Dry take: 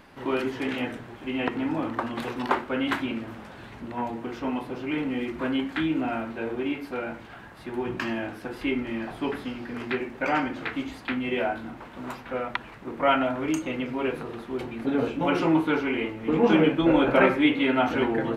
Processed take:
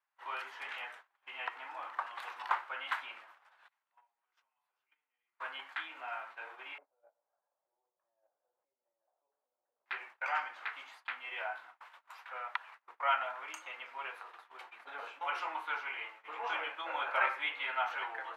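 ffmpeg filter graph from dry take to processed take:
-filter_complex "[0:a]asettb=1/sr,asplit=3[a][b][c];[a]atrim=end=3.684[d];[b]atrim=start=3.68:end=5.4,asetpts=PTS-STARTPTS,afade=t=in:d=0.004:c=qsin,afade=t=out:st=1.716:d=0.004:c=qsin,agate=range=-33dB:threshold=-40dB:ratio=3:release=100:detection=peak,highshelf=f=5k:g=11,acompressor=threshold=-40dB:ratio=16:attack=3.2:release=140:knee=1:detection=peak[e];[c]atrim=start=5.396[f];[d][e]acrossfade=d=0.004:c1=hsin:c2=qsin[g];[g][f]acrossfade=d=0.004:c1=qsin:c2=hsin,asettb=1/sr,asplit=3[h][i][j];[h]atrim=end=6.784[k];[i]atrim=start=6.78:end=9.86,asetpts=PTS-STARTPTS,afade=t=in:d=0.004:c=qsin,afade=t=out:st=3.076:d=0.004:c=qsin,equalizer=f=160:w=3.5:g=13.5,acompressor=threshold=-36dB:ratio=8:attack=3.2:release=140:knee=1:detection=peak,lowpass=f=560:t=q:w=5.2[l];[j]atrim=start=9.856[m];[k][l]acrossfade=d=0.004:c1=hsin:c2=qsin[n];[n][m]acrossfade=d=0.004:c1=qsin:c2=hsin,asettb=1/sr,asplit=3[o][p][q];[o]atrim=end=11.804[r];[p]atrim=start=11.8:end=12.29,asetpts=PTS-STARTPTS,afade=t=in:d=0.004:c=qsin,afade=t=out:st=0.486:d=0.004:c=qsin,acompressor=threshold=-39dB:ratio=6:attack=3.2:release=140:knee=1:detection=peak,highshelf=f=2k:g=6.5[s];[q]atrim=start=12.286[t];[r][s]acrossfade=d=0.004:c1=hsin:c2=qsin[u];[u][t]acrossfade=d=0.004:c1=qsin:c2=hsin,highpass=f=920:w=0.5412,highpass=f=920:w=1.3066,agate=range=-27dB:threshold=-46dB:ratio=16:detection=peak,highshelf=f=2.2k:g=-10.5,volume=-2.5dB"

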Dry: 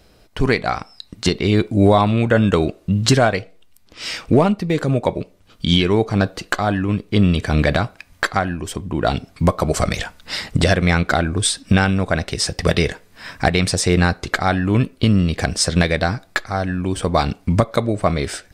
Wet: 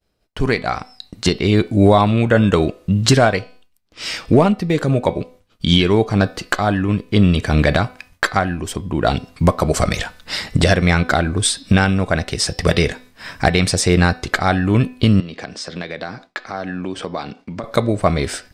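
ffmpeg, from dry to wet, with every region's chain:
-filter_complex "[0:a]asettb=1/sr,asplit=3[a][b][c];[a]atrim=end=15.204[d];[b]atrim=start=15.2:end=17.64,asetpts=PTS-STARTPTS,afade=t=in:d=0.004:c=qsin,afade=t=out:st=2.436:d=0.004:c=qsin,acrossover=split=160 6400:gain=0.112 1 0.0794[e][f][g];[e][f][g]amix=inputs=3:normalize=0,acompressor=threshold=-36dB:ratio=2:attack=3.2:release=140:knee=1:detection=peak[h];[c]atrim=start=17.636[i];[d][h]acrossfade=d=0.004:c1=hsin:c2=qsin[j];[j][i]acrossfade=d=0.004:c1=qsin:c2=hsin,bandreject=f=251.5:t=h:w=4,bandreject=f=503:t=h:w=4,bandreject=f=754.5:t=h:w=4,bandreject=f=1.006k:t=h:w=4,bandreject=f=1.2575k:t=h:w=4,bandreject=f=1.509k:t=h:w=4,bandreject=f=1.7605k:t=h:w=4,bandreject=f=2.012k:t=h:w=4,bandreject=f=2.2635k:t=h:w=4,bandreject=f=2.515k:t=h:w=4,bandreject=f=2.7665k:t=h:w=4,bandreject=f=3.018k:t=h:w=4,bandreject=f=3.2695k:t=h:w=4,bandreject=f=3.521k:t=h:w=4,bandreject=f=3.7725k:t=h:w=4,bandreject=f=4.024k:t=h:w=4,bandreject=f=4.2755k:t=h:w=4,bandreject=f=4.527k:t=h:w=4,bandreject=f=4.7785k:t=h:w=4,bandreject=f=5.03k:t=h:w=4,bandreject=f=5.2815k:t=h:w=4,bandreject=f=5.533k:t=h:w=4,agate=range=-33dB:threshold=-40dB:ratio=3:detection=peak,dynaudnorm=f=560:g=3:m=11.5dB,volume=-1dB"

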